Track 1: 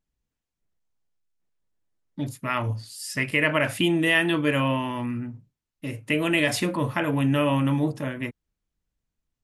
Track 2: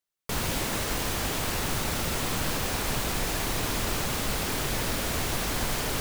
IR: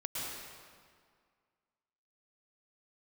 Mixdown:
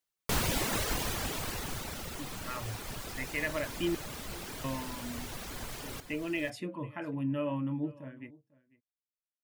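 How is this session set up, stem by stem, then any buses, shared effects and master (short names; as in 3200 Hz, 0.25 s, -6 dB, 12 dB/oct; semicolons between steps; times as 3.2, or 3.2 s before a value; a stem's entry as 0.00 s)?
-11.5 dB, 0.00 s, muted 3.95–4.64, no send, echo send -22 dB, low shelf 190 Hz -4 dB; spectral expander 1.5:1
+0.5 dB, 0.00 s, no send, echo send -21 dB, reverb removal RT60 0.93 s; auto duck -11 dB, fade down 1.40 s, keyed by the first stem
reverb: off
echo: echo 0.497 s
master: dry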